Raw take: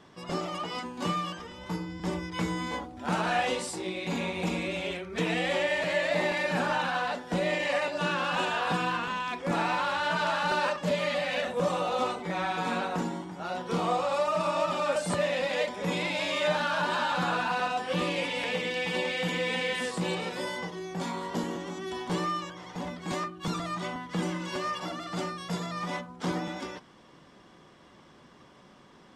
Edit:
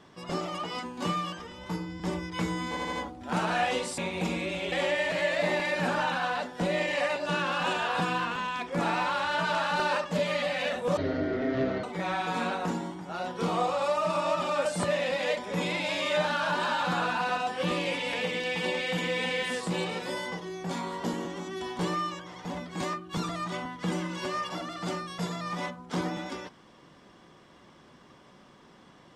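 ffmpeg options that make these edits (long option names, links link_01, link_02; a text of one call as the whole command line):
ffmpeg -i in.wav -filter_complex "[0:a]asplit=8[link_01][link_02][link_03][link_04][link_05][link_06][link_07][link_08];[link_01]atrim=end=2.772[link_09];[link_02]atrim=start=2.688:end=2.772[link_10];[link_03]atrim=start=2.688:end=2.772[link_11];[link_04]atrim=start=2.688:end=3.742[link_12];[link_05]atrim=start=4.198:end=4.942[link_13];[link_06]atrim=start=5.438:end=11.694[link_14];[link_07]atrim=start=11.69:end=12.14,asetpts=PTS-STARTPTS,asetrate=22932,aresample=44100,atrim=end_sample=38163,asetpts=PTS-STARTPTS[link_15];[link_08]atrim=start=12.136[link_16];[link_09][link_10]acrossfade=duration=0.004:curve1=hsin:curve2=hsin[link_17];[link_17][link_11]acrossfade=duration=0.004:curve1=hsin:curve2=hsin[link_18];[link_18][link_12]acrossfade=duration=0.004:curve1=hsin:curve2=hsin[link_19];[link_19][link_13]acrossfade=duration=0.004:curve1=hsin:curve2=hsin[link_20];[link_20][link_14]acrossfade=duration=0.004:curve1=hsin:curve2=hsin[link_21];[link_21][link_15]acrossfade=duration=0.004:curve1=hsin:curve2=hsin[link_22];[link_22][link_16]acrossfade=duration=0.004:curve1=hsin:curve2=hsin" out.wav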